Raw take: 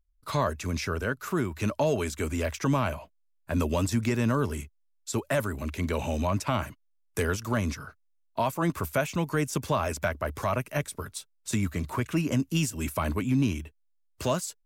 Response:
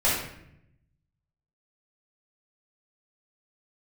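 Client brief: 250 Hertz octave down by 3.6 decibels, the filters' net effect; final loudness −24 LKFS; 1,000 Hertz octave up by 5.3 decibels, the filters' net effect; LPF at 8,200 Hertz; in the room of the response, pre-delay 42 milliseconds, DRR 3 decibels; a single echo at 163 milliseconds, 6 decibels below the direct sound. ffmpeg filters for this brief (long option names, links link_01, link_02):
-filter_complex "[0:a]lowpass=8200,equalizer=frequency=250:width_type=o:gain=-5,equalizer=frequency=1000:width_type=o:gain=6.5,aecho=1:1:163:0.501,asplit=2[link_01][link_02];[1:a]atrim=start_sample=2205,adelay=42[link_03];[link_02][link_03]afir=irnorm=-1:irlink=0,volume=-17.5dB[link_04];[link_01][link_04]amix=inputs=2:normalize=0,volume=2dB"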